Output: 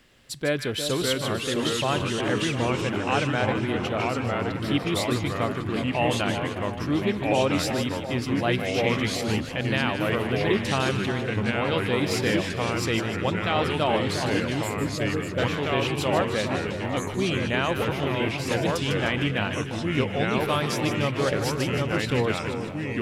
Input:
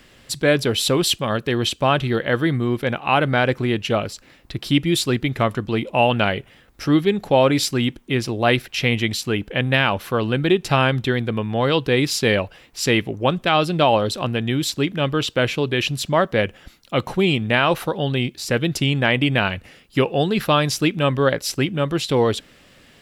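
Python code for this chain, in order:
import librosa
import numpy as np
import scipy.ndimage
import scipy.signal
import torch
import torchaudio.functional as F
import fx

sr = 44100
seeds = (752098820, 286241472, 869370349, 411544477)

y = fx.echo_split(x, sr, split_hz=1100.0, low_ms=354, high_ms=152, feedback_pct=52, wet_db=-8)
y = fx.spec_erase(y, sr, start_s=14.63, length_s=0.75, low_hz=740.0, high_hz=6800.0)
y = fx.echo_pitch(y, sr, ms=549, semitones=-2, count=3, db_per_echo=-3.0)
y = y * librosa.db_to_amplitude(-8.5)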